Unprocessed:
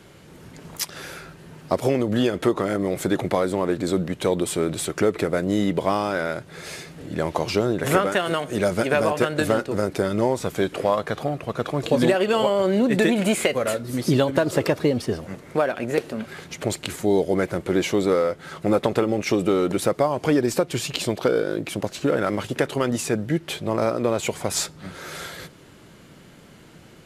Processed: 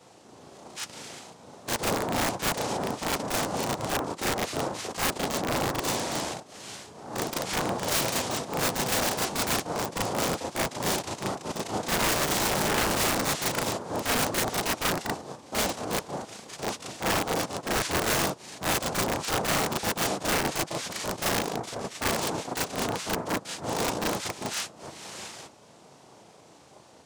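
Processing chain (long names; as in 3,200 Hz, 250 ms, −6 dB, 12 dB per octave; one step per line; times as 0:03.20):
cochlear-implant simulation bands 2
wrap-around overflow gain 13.5 dB
backwards echo 36 ms −4 dB
level −7 dB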